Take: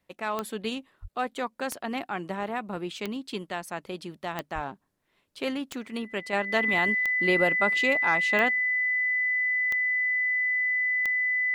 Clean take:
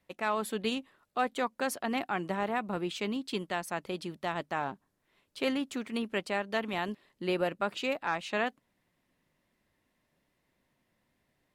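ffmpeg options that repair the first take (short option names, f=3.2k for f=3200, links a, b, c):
-filter_complex "[0:a]adeclick=t=4,bandreject=f=2k:w=30,asplit=3[a][b][c];[a]afade=t=out:st=1.01:d=0.02[d];[b]highpass=f=140:w=0.5412,highpass=f=140:w=1.3066,afade=t=in:st=1.01:d=0.02,afade=t=out:st=1.13:d=0.02[e];[c]afade=t=in:st=1.13:d=0.02[f];[d][e][f]amix=inputs=3:normalize=0,asplit=3[g][h][i];[g]afade=t=out:st=4.54:d=0.02[j];[h]highpass=f=140:w=0.5412,highpass=f=140:w=1.3066,afade=t=in:st=4.54:d=0.02,afade=t=out:st=4.66:d=0.02[k];[i]afade=t=in:st=4.66:d=0.02[l];[j][k][l]amix=inputs=3:normalize=0,asetnsamples=n=441:p=0,asendcmd='6.33 volume volume -5dB',volume=0dB"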